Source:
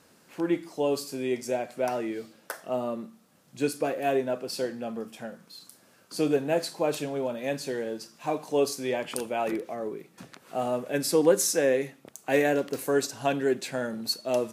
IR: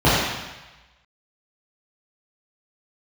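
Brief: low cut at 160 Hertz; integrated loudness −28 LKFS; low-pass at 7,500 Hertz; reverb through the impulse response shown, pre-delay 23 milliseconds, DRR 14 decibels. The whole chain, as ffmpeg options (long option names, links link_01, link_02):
-filter_complex "[0:a]highpass=160,lowpass=7500,asplit=2[link_01][link_02];[1:a]atrim=start_sample=2205,adelay=23[link_03];[link_02][link_03]afir=irnorm=-1:irlink=0,volume=-39dB[link_04];[link_01][link_04]amix=inputs=2:normalize=0,volume=0.5dB"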